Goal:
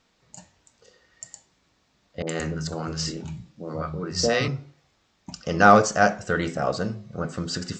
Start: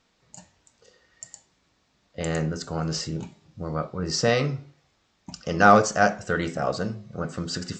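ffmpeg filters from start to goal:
ffmpeg -i in.wav -filter_complex "[0:a]asettb=1/sr,asplit=3[link_01][link_02][link_03];[link_01]atrim=end=2.224[link_04];[link_02]atrim=start=2.22:end=4.48,asetpts=PTS-STARTPTS,afade=type=in:duration=0.004:curve=qsin,afade=type=out:start_time=2.256:duration=0.004:curve=qsin,acrossover=split=170|780[link_05][link_06][link_07];[link_07]adelay=50[link_08];[link_05]adelay=170[link_09];[link_09][link_06][link_08]amix=inputs=3:normalize=0,atrim=end_sample=99666[link_10];[link_03]atrim=start=4.476[link_11];[link_04][link_10]acrossfade=duration=0.004:curve1=hsin:curve2=qsin[link_12];[link_12][link_11]acrossfade=duration=0.004:curve1=qsin:curve2=hsin,volume=1dB" out.wav

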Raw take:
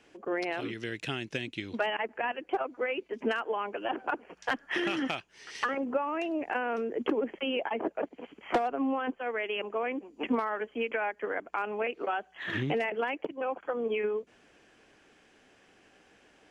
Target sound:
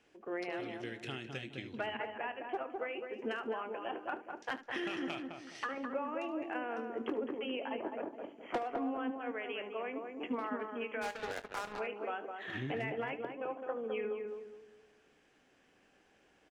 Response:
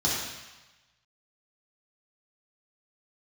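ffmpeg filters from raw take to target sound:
-filter_complex "[0:a]asplit=2[link_01][link_02];[link_02]adelay=209,lowpass=frequency=1200:poles=1,volume=-3.5dB,asplit=2[link_03][link_04];[link_04]adelay=209,lowpass=frequency=1200:poles=1,volume=0.36,asplit=2[link_05][link_06];[link_06]adelay=209,lowpass=frequency=1200:poles=1,volume=0.36,asplit=2[link_07][link_08];[link_08]adelay=209,lowpass=frequency=1200:poles=1,volume=0.36,asplit=2[link_09][link_10];[link_10]adelay=209,lowpass=frequency=1200:poles=1,volume=0.36[link_11];[link_03][link_05][link_07][link_09][link_11]amix=inputs=5:normalize=0[link_12];[link_01][link_12]amix=inputs=2:normalize=0,asplit=3[link_13][link_14][link_15];[link_13]afade=type=out:start_time=11.01:duration=0.02[link_16];[link_14]acrusher=bits=4:mix=0:aa=0.5,afade=type=in:start_time=11.01:duration=0.02,afade=type=out:start_time=11.78:duration=0.02[link_17];[link_15]afade=type=in:start_time=11.78:duration=0.02[link_18];[link_16][link_17][link_18]amix=inputs=3:normalize=0,asplit=2[link_19][link_20];[link_20]aecho=0:1:23|74:0.224|0.168[link_21];[link_19][link_21]amix=inputs=2:normalize=0,volume=-8.5dB"

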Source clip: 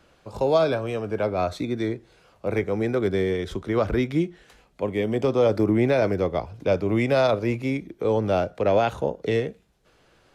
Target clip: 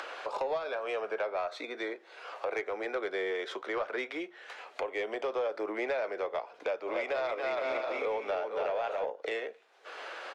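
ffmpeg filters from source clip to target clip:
ffmpeg -i in.wav -filter_complex "[0:a]asplit=3[link_01][link_02][link_03];[link_01]afade=type=out:start_time=6.86:duration=0.02[link_04];[link_02]aecho=1:1:280|462|580.3|657.2|707.2:0.631|0.398|0.251|0.158|0.1,afade=type=in:start_time=6.86:duration=0.02,afade=type=out:start_time=9.04:duration=0.02[link_05];[link_03]afade=type=in:start_time=9.04:duration=0.02[link_06];[link_04][link_05][link_06]amix=inputs=3:normalize=0,crystalizer=i=10:c=0,lowpass=1600,acompressor=mode=upward:threshold=-19dB:ratio=2.5,highpass=frequency=460:width=0.5412,highpass=frequency=460:width=1.3066,acompressor=threshold=-23dB:ratio=12,asoftclip=type=tanh:threshold=-19.5dB,flanger=delay=2.4:depth=2.9:regen=-77:speed=0.41:shape=triangular" out.wav

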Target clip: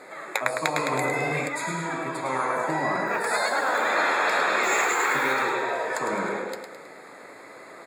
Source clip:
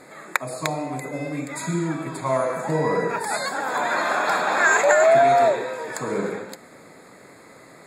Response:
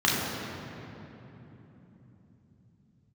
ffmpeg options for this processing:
-filter_complex "[0:a]bass=frequency=250:gain=-15,treble=frequency=4000:gain=-7,asettb=1/sr,asplit=3[link_01][link_02][link_03];[link_01]atrim=end=4.634[link_04];[link_02]atrim=start=4.63:end=5.33,asetpts=PTS-STARTPTS,afade=type=in:duration=0.004:curve=qsin,afade=type=out:start_time=0.696:duration=0.004:curve=qsin,acrusher=bits=8:dc=4:mix=0:aa=0.000001[link_05];[link_03]atrim=start=5.326[link_06];[link_04][link_05]acrossfade=duration=0.004:curve1=hsin:curve2=qsin[link_07];[link_07][link_06]acrossfade=duration=0.004:curve1=qsin:curve2=hsin,flanger=delay=4.4:depth=4.8:regen=70:speed=1.3:shape=triangular,asettb=1/sr,asplit=3[link_08][link_09][link_10];[link_08]atrim=end=3.074[link_11];[link_09]atrim=start=3.07:end=3.88,asetpts=PTS-STARTPTS,afade=type=in:duration=0.004:curve=qsin,afade=type=out:start_time=0.806:duration=0.004:curve=qsin,acrusher=bits=9:mode=log:mix=0:aa=0.000001[link_12];[link_10]atrim=start=3.876[link_13];[link_11][link_12]acrossfade=duration=0.004:curve1=hsin:curve2=qsin[link_14];[link_14][link_13]acrossfade=duration=0.004:curve1=qsin:curve2=hsin,aecho=1:1:106|212|318|424|530:0.473|0.213|0.0958|0.0431|0.0194,asplit=3[link_15][link_16][link_17];[link_15]afade=type=out:start_time=0.76:duration=0.02[link_18];[link_16]acontrast=87,afade=type=in:start_time=0.76:duration=0.02,afade=type=out:start_time=1.47:duration=0.02[link_19];[link_17]afade=type=in:start_time=1.47:duration=0.02[link_20];[link_18][link_19][link_20]amix=inputs=3:normalize=0,afftfilt=real='re*lt(hypot(re,im),0.178)':imag='im*lt(hypot(re,im),0.178)':win_size=1024:overlap=0.75,volume=7.5dB"

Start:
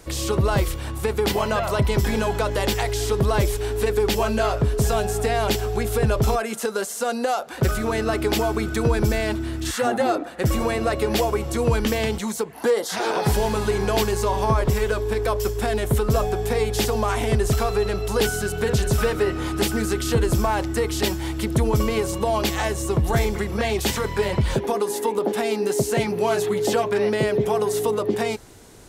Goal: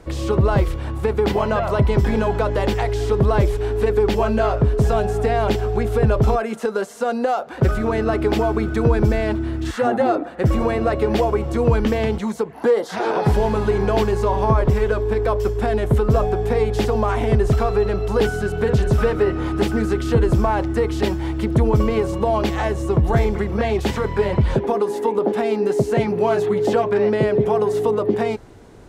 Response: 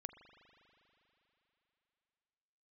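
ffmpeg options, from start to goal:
-af "lowpass=frequency=1300:poles=1,volume=4dB"

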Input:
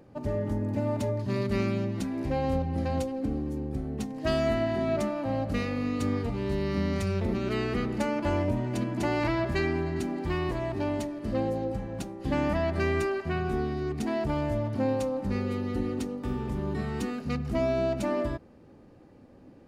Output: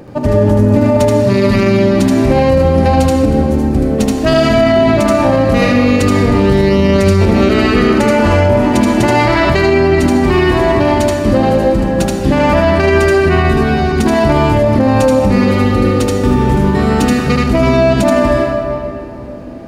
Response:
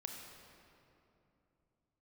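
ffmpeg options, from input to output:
-filter_complex "[0:a]asplit=2[link_01][link_02];[1:a]atrim=start_sample=2205,lowshelf=frequency=440:gain=-6.5,adelay=77[link_03];[link_02][link_03]afir=irnorm=-1:irlink=0,volume=4dB[link_04];[link_01][link_04]amix=inputs=2:normalize=0,alimiter=level_in=20dB:limit=-1dB:release=50:level=0:latency=1,volume=-1dB"

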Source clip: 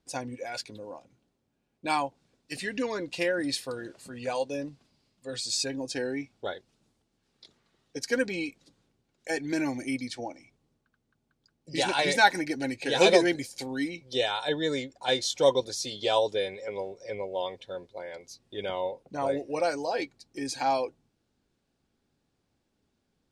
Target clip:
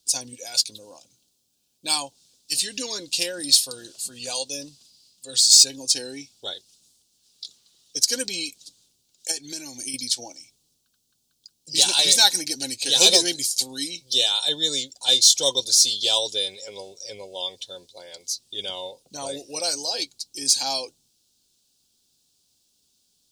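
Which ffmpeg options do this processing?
ffmpeg -i in.wav -filter_complex "[0:a]asettb=1/sr,asplit=3[link_01][link_02][link_03];[link_01]atrim=end=9.314[link_04];[link_02]atrim=start=9.31:end=9.94,asetpts=PTS-STARTPTS,afade=type=in:duration=0.004:curve=qsin,afade=type=out:start_time=0.626:duration=0.004:curve=qsin,acompressor=threshold=-33dB:ratio=12[link_05];[link_03]atrim=start=9.936[link_06];[link_04][link_05]acrossfade=duration=0.004:curve1=hsin:curve2=qsin[link_07];[link_07][link_06]acrossfade=duration=0.004:curve1=qsin:curve2=hsin,aexciter=amount=6.9:drive=9.5:freq=3100,volume=-5dB" out.wav

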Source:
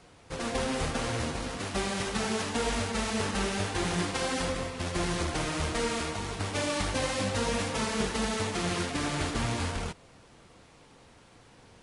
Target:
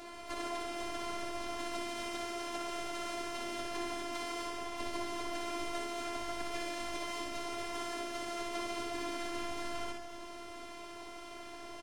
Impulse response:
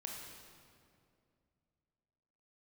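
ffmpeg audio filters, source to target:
-filter_complex "[0:a]highpass=frequency=140:poles=1,highshelf=frequency=3400:gain=-6.5,acompressor=threshold=-46dB:ratio=16,asplit=4[link_01][link_02][link_03][link_04];[link_02]asetrate=37084,aresample=44100,atempo=1.18921,volume=-8dB[link_05];[link_03]asetrate=66075,aresample=44100,atempo=0.66742,volume=-10dB[link_06];[link_04]asetrate=88200,aresample=44100,atempo=0.5,volume=-17dB[link_07];[link_01][link_05][link_06][link_07]amix=inputs=4:normalize=0,afftfilt=real='hypot(re,im)*cos(PI*b)':imag='0':win_size=512:overlap=0.75,asplit=2[link_08][link_09];[link_09]aecho=0:1:60|138|239.4|371.2|542.6:0.631|0.398|0.251|0.158|0.1[link_10];[link_08][link_10]amix=inputs=2:normalize=0,volume=12dB"

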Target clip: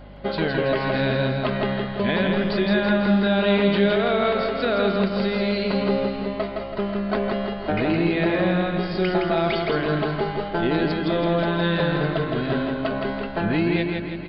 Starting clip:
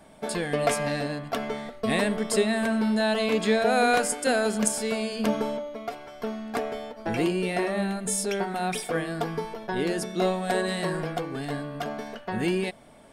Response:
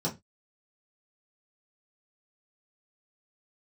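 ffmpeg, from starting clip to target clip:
-filter_complex "[0:a]alimiter=limit=-19.5dB:level=0:latency=1:release=142,aresample=11025,aresample=44100,acontrast=54,asplit=2[link_01][link_02];[link_02]aecho=0:1:485:0.211[link_03];[link_01][link_03]amix=inputs=2:normalize=0,asetrate=40517,aresample=44100,asplit=2[link_04][link_05];[link_05]aecho=0:1:164|328|492|656|820|984:0.631|0.29|0.134|0.0614|0.0283|0.013[link_06];[link_04][link_06]amix=inputs=2:normalize=0,aeval=exprs='val(0)+0.00708*(sin(2*PI*50*n/s)+sin(2*PI*2*50*n/s)/2+sin(2*PI*3*50*n/s)/3+sin(2*PI*4*50*n/s)/4+sin(2*PI*5*50*n/s)/5)':channel_layout=same"

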